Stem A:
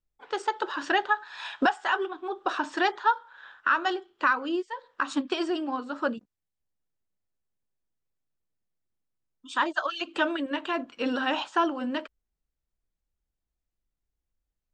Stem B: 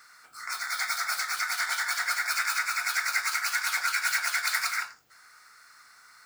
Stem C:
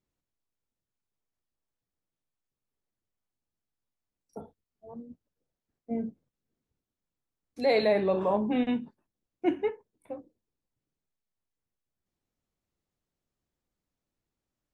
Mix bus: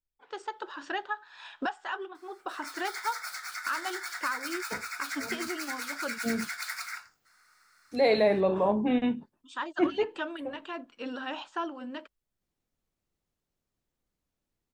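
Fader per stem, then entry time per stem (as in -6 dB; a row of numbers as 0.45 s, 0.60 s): -9.0 dB, -9.0 dB, +1.0 dB; 0.00 s, 2.15 s, 0.35 s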